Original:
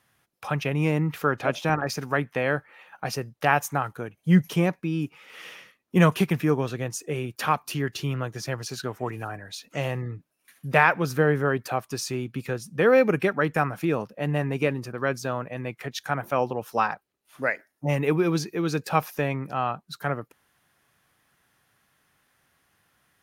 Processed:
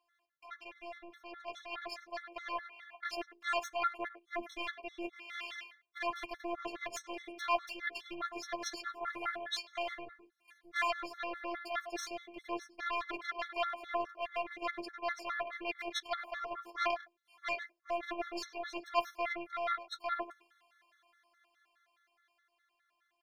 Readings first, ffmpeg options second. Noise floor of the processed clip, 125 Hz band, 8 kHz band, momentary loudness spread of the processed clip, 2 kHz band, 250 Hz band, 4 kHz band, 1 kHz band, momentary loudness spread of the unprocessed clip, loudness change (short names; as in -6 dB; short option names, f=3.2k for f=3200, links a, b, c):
-80 dBFS, under -40 dB, -12.5 dB, 11 LU, -11.0 dB, -21.0 dB, -5.5 dB, -9.5 dB, 12 LU, -13.0 dB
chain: -filter_complex "[0:a]asplit=2[a][b];[b]asoftclip=type=tanh:threshold=-21dB,volume=-10dB[c];[a][c]amix=inputs=2:normalize=0,aeval=exprs='0.708*(cos(1*acos(clip(val(0)/0.708,-1,1)))-cos(1*PI/2))+0.251*(cos(2*acos(clip(val(0)/0.708,-1,1)))-cos(2*PI/2))+0.0708*(cos(3*acos(clip(val(0)/0.708,-1,1)))-cos(3*PI/2))+0.1*(cos(6*acos(clip(val(0)/0.708,-1,1)))-cos(6*PI/2))+0.224*(cos(8*acos(clip(val(0)/0.708,-1,1)))-cos(8*PI/2))':c=same,areverse,acompressor=threshold=-29dB:ratio=16,areverse,bandreject=f=60:t=h:w=6,bandreject=f=120:t=h:w=6,bandreject=f=180:t=h:w=6,bandreject=f=240:t=h:w=6,bandreject=f=300:t=h:w=6,bandreject=f=360:t=h:w=6,bandreject=f=420:t=h:w=6,asplit=2[d][e];[e]adelay=100,highpass=300,lowpass=3.4k,asoftclip=type=hard:threshold=-25dB,volume=-12dB[f];[d][f]amix=inputs=2:normalize=0,afftfilt=real='hypot(re,im)*cos(PI*b)':imag='0':win_size=512:overlap=0.75,dynaudnorm=f=270:g=17:m=10.5dB,acrossover=split=440 5200:gain=0.0708 1 0.141[g][h][i];[g][h][i]amix=inputs=3:normalize=0,flanger=delay=8.5:depth=3.1:regen=-24:speed=0.47:shape=sinusoidal,afftfilt=real='re*gt(sin(2*PI*4.8*pts/sr)*(1-2*mod(floor(b*sr/1024/1100),2)),0)':imag='im*gt(sin(2*PI*4.8*pts/sr)*(1-2*mod(floor(b*sr/1024/1100),2)),0)':win_size=1024:overlap=0.75,volume=1dB"